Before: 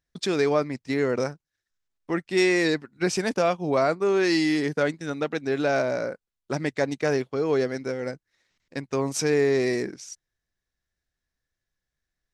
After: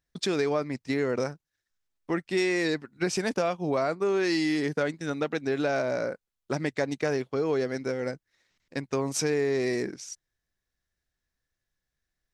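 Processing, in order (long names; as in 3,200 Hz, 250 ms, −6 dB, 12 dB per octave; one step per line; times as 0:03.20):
downward compressor 3 to 1, threshold −24 dBFS, peak gain reduction 6 dB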